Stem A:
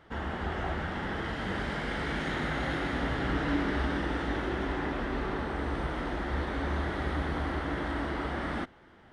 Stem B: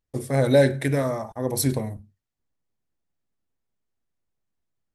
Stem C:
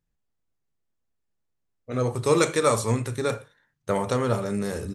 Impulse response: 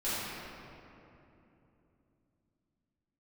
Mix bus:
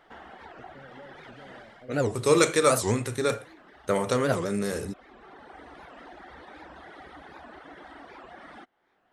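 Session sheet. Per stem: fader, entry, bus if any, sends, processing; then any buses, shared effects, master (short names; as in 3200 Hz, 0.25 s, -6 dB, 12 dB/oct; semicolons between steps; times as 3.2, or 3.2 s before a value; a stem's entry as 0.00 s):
0.0 dB, 0.00 s, bus A, no send, reverb removal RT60 1.6 s; low shelf 190 Hz -10 dB; auto duck -15 dB, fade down 0.30 s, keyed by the third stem
-7.0 dB, 0.45 s, bus A, no send, Chebyshev low-pass 580 Hz, order 4; compressor, threshold -30 dBFS, peak gain reduction 16 dB
+2.0 dB, 0.00 s, no bus, no send, bell 860 Hz -5 dB
bus A: 0.0 dB, bell 740 Hz +6.5 dB 0.25 oct; compressor 2:1, threshold -49 dBFS, peak gain reduction 11 dB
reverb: off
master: bell 80 Hz -7 dB 2.5 oct; record warp 78 rpm, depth 250 cents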